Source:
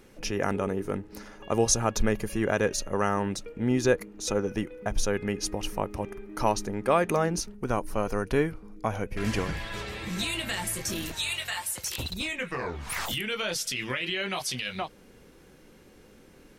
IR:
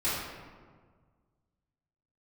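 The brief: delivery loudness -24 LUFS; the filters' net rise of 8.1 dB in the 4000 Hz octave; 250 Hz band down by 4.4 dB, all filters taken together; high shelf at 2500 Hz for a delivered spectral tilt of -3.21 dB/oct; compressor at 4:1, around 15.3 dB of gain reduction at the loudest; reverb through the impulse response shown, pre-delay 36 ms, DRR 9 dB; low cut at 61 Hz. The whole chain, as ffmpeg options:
-filter_complex "[0:a]highpass=61,equalizer=f=250:t=o:g=-6,highshelf=f=2.5k:g=8,equalizer=f=4k:t=o:g=3.5,acompressor=threshold=-30dB:ratio=4,asplit=2[a][b];[1:a]atrim=start_sample=2205,adelay=36[c];[b][c]afir=irnorm=-1:irlink=0,volume=-18.5dB[d];[a][d]amix=inputs=2:normalize=0,volume=8.5dB"

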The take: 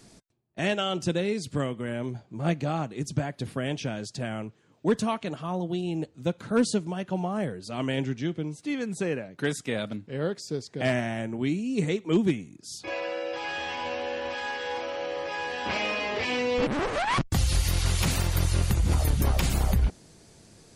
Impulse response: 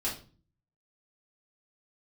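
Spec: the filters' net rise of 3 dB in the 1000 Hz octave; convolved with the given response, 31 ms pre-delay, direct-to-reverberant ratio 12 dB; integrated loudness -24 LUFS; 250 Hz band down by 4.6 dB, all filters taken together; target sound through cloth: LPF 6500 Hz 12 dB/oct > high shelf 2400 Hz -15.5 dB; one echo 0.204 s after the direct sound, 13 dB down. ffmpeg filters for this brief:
-filter_complex "[0:a]equalizer=f=250:t=o:g=-6.5,equalizer=f=1k:t=o:g=7,aecho=1:1:204:0.224,asplit=2[a][b];[1:a]atrim=start_sample=2205,adelay=31[c];[b][c]afir=irnorm=-1:irlink=0,volume=-17dB[d];[a][d]amix=inputs=2:normalize=0,lowpass=6.5k,highshelf=f=2.4k:g=-15.5,volume=6dB"

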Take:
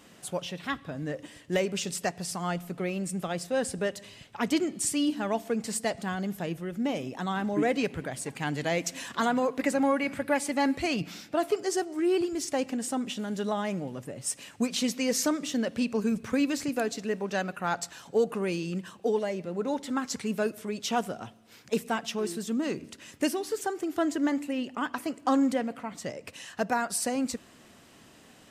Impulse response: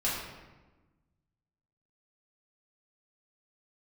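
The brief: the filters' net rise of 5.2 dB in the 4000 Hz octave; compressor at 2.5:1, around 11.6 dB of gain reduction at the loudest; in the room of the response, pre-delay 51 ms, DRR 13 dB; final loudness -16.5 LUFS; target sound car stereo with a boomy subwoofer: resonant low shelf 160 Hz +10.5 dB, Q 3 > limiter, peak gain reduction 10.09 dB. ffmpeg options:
-filter_complex "[0:a]equalizer=f=4k:t=o:g=7,acompressor=threshold=-39dB:ratio=2.5,asplit=2[a][b];[1:a]atrim=start_sample=2205,adelay=51[c];[b][c]afir=irnorm=-1:irlink=0,volume=-21dB[d];[a][d]amix=inputs=2:normalize=0,lowshelf=f=160:t=q:w=3:g=10.5,volume=26dB,alimiter=limit=-7dB:level=0:latency=1"

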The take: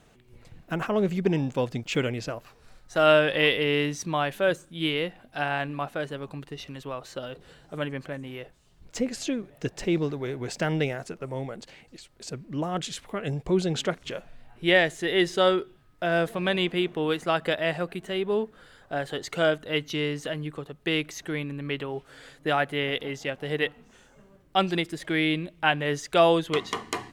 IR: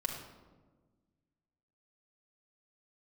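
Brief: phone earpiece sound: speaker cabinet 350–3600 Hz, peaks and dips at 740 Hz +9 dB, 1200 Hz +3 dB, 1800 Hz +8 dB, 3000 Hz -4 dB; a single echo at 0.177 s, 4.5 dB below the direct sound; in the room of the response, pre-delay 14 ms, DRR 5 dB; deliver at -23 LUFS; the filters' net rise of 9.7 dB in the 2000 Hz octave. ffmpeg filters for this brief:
-filter_complex "[0:a]equalizer=f=2k:t=o:g=6,aecho=1:1:177:0.596,asplit=2[a][b];[1:a]atrim=start_sample=2205,adelay=14[c];[b][c]afir=irnorm=-1:irlink=0,volume=-7.5dB[d];[a][d]amix=inputs=2:normalize=0,highpass=350,equalizer=f=740:t=q:w=4:g=9,equalizer=f=1.2k:t=q:w=4:g=3,equalizer=f=1.8k:t=q:w=4:g=8,equalizer=f=3k:t=q:w=4:g=-4,lowpass=f=3.6k:w=0.5412,lowpass=f=3.6k:w=1.3066,volume=-3dB"

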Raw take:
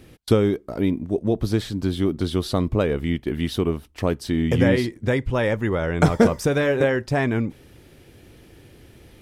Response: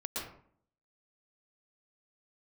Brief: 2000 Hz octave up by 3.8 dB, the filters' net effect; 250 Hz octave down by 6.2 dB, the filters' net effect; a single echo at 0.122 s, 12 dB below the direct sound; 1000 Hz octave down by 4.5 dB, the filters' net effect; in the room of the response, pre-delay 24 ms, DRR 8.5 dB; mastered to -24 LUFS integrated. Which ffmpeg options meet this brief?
-filter_complex "[0:a]equalizer=f=250:t=o:g=-8,equalizer=f=1k:t=o:g=-8.5,equalizer=f=2k:t=o:g=7.5,aecho=1:1:122:0.251,asplit=2[a][b];[1:a]atrim=start_sample=2205,adelay=24[c];[b][c]afir=irnorm=-1:irlink=0,volume=-11dB[d];[a][d]amix=inputs=2:normalize=0"

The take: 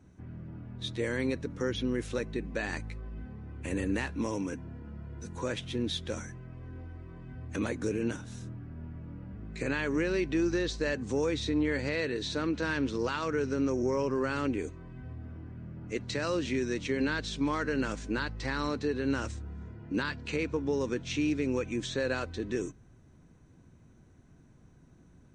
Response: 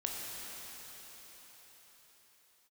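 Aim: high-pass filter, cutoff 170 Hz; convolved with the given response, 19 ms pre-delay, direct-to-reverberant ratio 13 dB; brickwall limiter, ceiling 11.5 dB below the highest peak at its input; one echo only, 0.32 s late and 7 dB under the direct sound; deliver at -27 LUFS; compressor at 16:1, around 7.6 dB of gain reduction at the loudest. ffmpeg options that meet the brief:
-filter_complex "[0:a]highpass=170,acompressor=threshold=-33dB:ratio=16,alimiter=level_in=10dB:limit=-24dB:level=0:latency=1,volume=-10dB,aecho=1:1:320:0.447,asplit=2[a][b];[1:a]atrim=start_sample=2205,adelay=19[c];[b][c]afir=irnorm=-1:irlink=0,volume=-16.5dB[d];[a][d]amix=inputs=2:normalize=0,volume=16dB"

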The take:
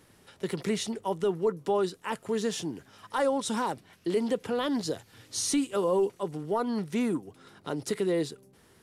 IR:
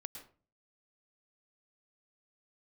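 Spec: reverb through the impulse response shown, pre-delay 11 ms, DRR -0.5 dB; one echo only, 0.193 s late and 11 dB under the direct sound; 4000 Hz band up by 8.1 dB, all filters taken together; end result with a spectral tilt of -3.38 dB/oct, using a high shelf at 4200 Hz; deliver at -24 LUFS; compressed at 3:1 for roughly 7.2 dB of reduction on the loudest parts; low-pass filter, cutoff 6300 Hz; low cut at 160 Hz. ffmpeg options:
-filter_complex "[0:a]highpass=160,lowpass=6.3k,equalizer=f=4k:t=o:g=8.5,highshelf=f=4.2k:g=4,acompressor=threshold=-32dB:ratio=3,aecho=1:1:193:0.282,asplit=2[a][b];[1:a]atrim=start_sample=2205,adelay=11[c];[b][c]afir=irnorm=-1:irlink=0,volume=4dB[d];[a][d]amix=inputs=2:normalize=0,volume=8dB"

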